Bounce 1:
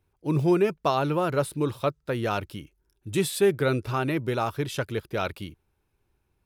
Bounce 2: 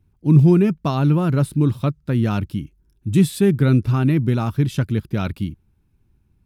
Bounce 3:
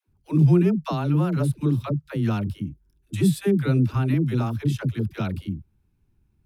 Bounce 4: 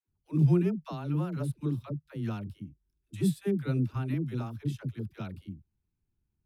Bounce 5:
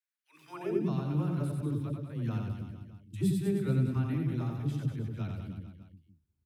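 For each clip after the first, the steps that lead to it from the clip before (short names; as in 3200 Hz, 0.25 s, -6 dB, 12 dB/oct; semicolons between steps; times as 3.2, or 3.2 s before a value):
resonant low shelf 330 Hz +12 dB, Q 1.5
dispersion lows, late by 82 ms, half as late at 430 Hz; gain -4.5 dB
upward expander 1.5:1, over -31 dBFS; gain -5.5 dB
reverse bouncing-ball echo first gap 90 ms, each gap 1.15×, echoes 5; high-pass sweep 1800 Hz -> 76 Hz, 0.44–1.07; gain -3.5 dB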